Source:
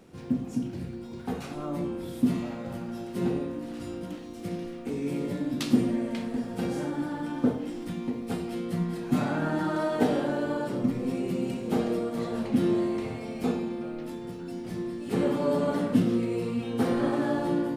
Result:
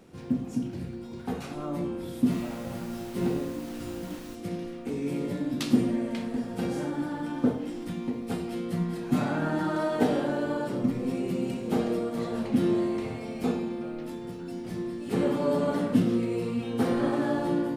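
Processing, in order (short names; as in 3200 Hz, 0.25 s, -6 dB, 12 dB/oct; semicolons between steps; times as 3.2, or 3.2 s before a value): 2.3–4.34 added noise pink -48 dBFS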